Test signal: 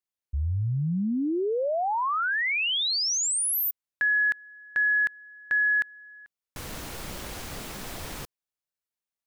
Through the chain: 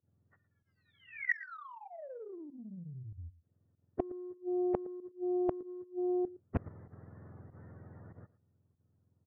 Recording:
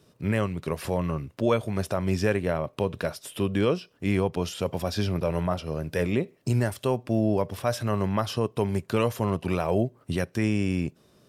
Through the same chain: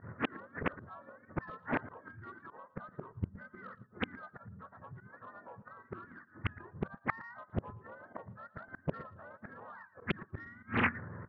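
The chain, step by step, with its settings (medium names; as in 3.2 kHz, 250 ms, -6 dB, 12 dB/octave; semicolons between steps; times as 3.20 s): spectrum inverted on a logarithmic axis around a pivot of 780 Hz; dynamic bell 270 Hz, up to -7 dB, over -45 dBFS, Q 3.5; compression 2:1, threshold -35 dBFS; rippled Chebyshev low-pass 1.9 kHz, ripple 3 dB; volume shaper 96 bpm, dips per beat 1, -22 dB, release 84 ms; saturation -25.5 dBFS; inverted gate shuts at -35 dBFS, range -29 dB; on a send: delay 114 ms -18 dB; on the sum: loudspeaker Doppler distortion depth 0.99 ms; trim +17 dB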